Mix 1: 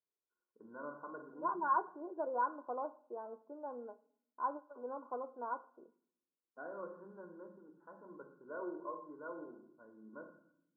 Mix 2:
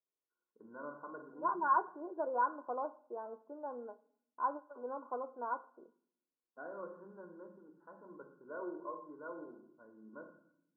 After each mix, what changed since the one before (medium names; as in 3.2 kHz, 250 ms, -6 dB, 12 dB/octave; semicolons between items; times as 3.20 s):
second voice: remove distance through air 470 m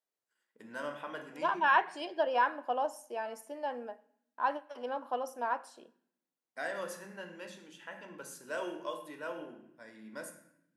first voice: remove distance through air 380 m; master: remove rippled Chebyshev low-pass 1.5 kHz, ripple 9 dB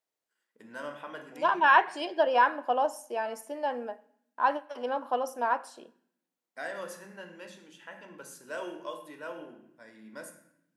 second voice +5.5 dB